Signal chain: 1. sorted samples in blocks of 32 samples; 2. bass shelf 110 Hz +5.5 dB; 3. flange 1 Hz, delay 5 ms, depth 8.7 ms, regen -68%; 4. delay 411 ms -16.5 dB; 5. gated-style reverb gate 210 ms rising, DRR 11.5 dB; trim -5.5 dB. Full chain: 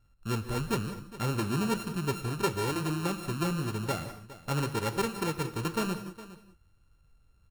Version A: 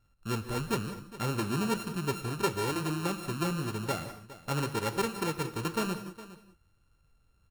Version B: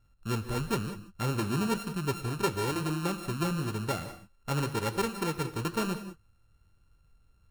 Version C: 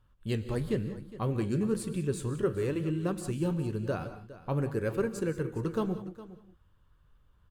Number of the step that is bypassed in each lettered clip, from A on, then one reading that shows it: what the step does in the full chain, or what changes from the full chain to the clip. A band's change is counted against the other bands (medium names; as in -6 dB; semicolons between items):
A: 2, 125 Hz band -2.0 dB; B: 4, momentary loudness spread change -3 LU; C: 1, distortion -4 dB